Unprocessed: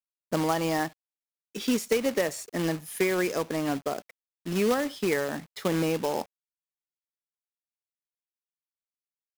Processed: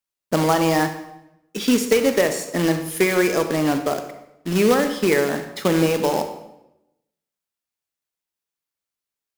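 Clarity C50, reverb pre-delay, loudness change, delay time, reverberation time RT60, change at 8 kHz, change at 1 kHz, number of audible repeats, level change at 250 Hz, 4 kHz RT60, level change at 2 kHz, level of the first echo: 9.0 dB, 31 ms, +8.0 dB, no echo audible, 0.85 s, +8.0 dB, +8.0 dB, no echo audible, +8.5 dB, 0.70 s, +8.0 dB, no echo audible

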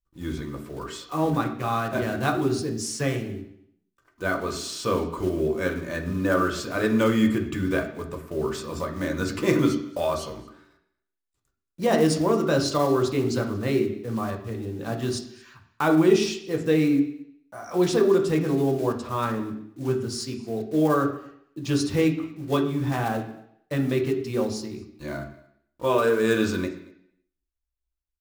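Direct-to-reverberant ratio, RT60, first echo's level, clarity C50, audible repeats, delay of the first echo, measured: 2.0 dB, 0.75 s, −24.0 dB, 8.5 dB, 1, 229 ms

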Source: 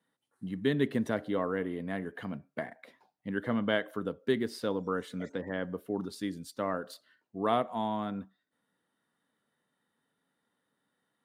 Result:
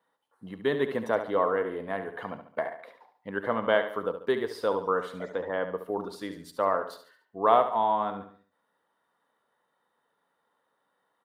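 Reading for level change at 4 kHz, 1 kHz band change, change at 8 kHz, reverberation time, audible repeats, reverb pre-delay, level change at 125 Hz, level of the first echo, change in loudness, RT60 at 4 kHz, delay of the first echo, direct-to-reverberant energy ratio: +0.5 dB, +9.0 dB, can't be measured, no reverb audible, 4, no reverb audible, −5.0 dB, −10.0 dB, +5.0 dB, no reverb audible, 71 ms, no reverb audible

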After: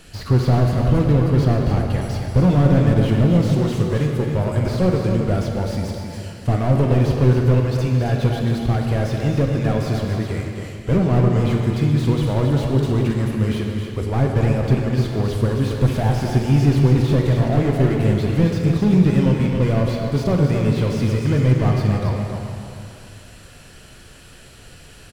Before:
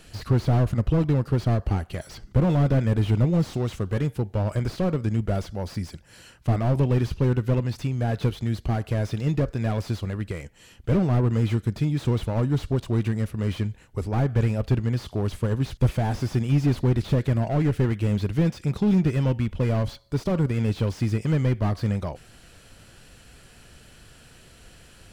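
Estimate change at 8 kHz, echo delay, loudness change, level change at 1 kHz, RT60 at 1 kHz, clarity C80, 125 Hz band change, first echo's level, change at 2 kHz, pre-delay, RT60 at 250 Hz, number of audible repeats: can't be measured, 271 ms, +6.0 dB, +6.5 dB, 2.7 s, 1.5 dB, +6.0 dB, −7.0 dB, +6.5 dB, 4 ms, 2.8 s, 1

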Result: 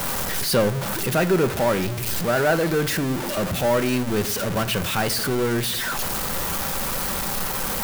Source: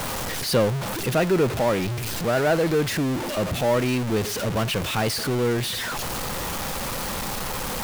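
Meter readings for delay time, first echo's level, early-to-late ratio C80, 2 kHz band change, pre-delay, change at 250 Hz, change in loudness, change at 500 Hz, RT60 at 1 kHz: no echo audible, no echo audible, 23.0 dB, +2.5 dB, 5 ms, +1.0 dB, +1.5 dB, +0.5 dB, 0.50 s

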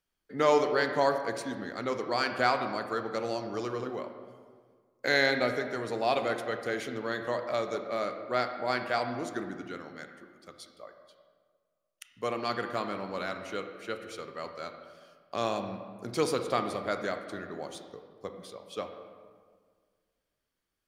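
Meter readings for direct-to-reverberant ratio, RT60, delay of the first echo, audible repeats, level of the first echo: 6.5 dB, 1.7 s, no echo audible, no echo audible, no echo audible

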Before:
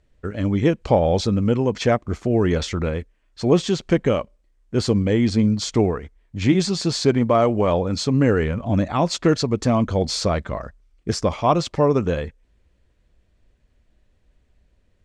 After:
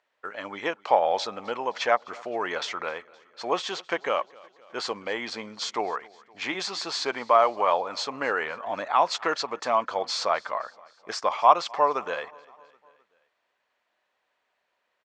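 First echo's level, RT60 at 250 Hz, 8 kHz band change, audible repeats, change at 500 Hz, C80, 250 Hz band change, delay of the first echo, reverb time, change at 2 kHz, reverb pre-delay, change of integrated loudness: −24.0 dB, no reverb audible, −7.5 dB, 3, −7.0 dB, no reverb audible, −20.5 dB, 259 ms, no reverb audible, +1.0 dB, no reverb audible, −6.0 dB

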